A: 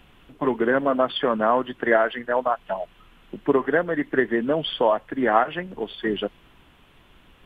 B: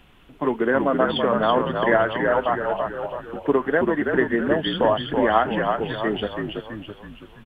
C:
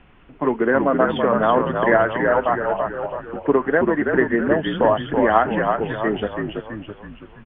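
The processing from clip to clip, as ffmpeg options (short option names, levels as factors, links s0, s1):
-filter_complex "[0:a]asplit=7[s0][s1][s2][s3][s4][s5][s6];[s1]adelay=329,afreqshift=-51,volume=0.596[s7];[s2]adelay=658,afreqshift=-102,volume=0.292[s8];[s3]adelay=987,afreqshift=-153,volume=0.143[s9];[s4]adelay=1316,afreqshift=-204,volume=0.07[s10];[s5]adelay=1645,afreqshift=-255,volume=0.0343[s11];[s6]adelay=1974,afreqshift=-306,volume=0.0168[s12];[s0][s7][s8][s9][s10][s11][s12]amix=inputs=7:normalize=0"
-af "lowpass=f=2600:w=0.5412,lowpass=f=2600:w=1.3066,volume=1.33"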